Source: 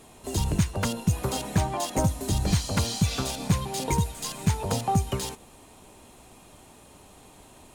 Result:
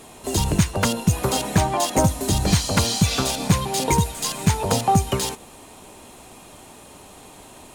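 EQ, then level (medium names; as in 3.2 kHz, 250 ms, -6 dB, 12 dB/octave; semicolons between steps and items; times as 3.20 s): bass shelf 150 Hz -6 dB; +8.0 dB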